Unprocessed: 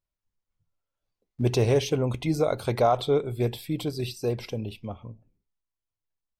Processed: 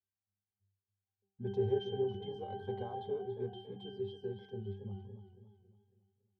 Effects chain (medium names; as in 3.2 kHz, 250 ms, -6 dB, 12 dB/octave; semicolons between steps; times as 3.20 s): bass shelf 83 Hz -7.5 dB; pitch-class resonator G, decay 0.53 s; modulated delay 278 ms, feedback 45%, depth 78 cents, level -10.5 dB; trim +7 dB